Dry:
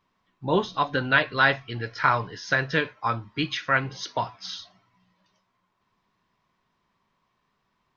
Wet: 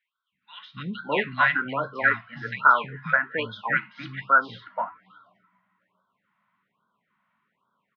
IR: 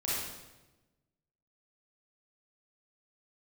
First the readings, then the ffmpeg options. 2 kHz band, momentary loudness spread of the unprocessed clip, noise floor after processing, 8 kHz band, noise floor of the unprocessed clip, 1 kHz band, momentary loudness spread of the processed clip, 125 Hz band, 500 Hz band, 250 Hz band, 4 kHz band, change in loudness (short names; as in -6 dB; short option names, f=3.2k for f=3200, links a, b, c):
+1.5 dB, 12 LU, -81 dBFS, n/a, -74 dBFS, +2.0 dB, 16 LU, -6.5 dB, -3.0 dB, -4.5 dB, -7.0 dB, +1.0 dB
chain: -filter_complex "[0:a]highpass=180,equalizer=f=210:t=q:w=4:g=5,equalizer=f=350:t=q:w=4:g=-7,equalizer=f=750:t=q:w=4:g=-4,equalizer=f=1.4k:t=q:w=4:g=10,equalizer=f=2k:t=q:w=4:g=7,lowpass=f=2.9k:w=0.5412,lowpass=f=2.9k:w=1.3066,acrossover=split=230|1800[a][b][c];[a]adelay=320[d];[b]adelay=610[e];[d][e][c]amix=inputs=3:normalize=0,afftfilt=real='re*(1-between(b*sr/1024,350*pow(2300/350,0.5+0.5*sin(2*PI*1.2*pts/sr))/1.41,350*pow(2300/350,0.5+0.5*sin(2*PI*1.2*pts/sr))*1.41))':imag='im*(1-between(b*sr/1024,350*pow(2300/350,0.5+0.5*sin(2*PI*1.2*pts/sr))/1.41,350*pow(2300/350,0.5+0.5*sin(2*PI*1.2*pts/sr))*1.41))':win_size=1024:overlap=0.75"